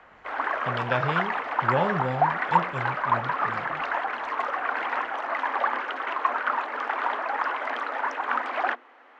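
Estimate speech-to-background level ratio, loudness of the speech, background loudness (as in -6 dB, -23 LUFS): -4.0 dB, -31.5 LUFS, -27.5 LUFS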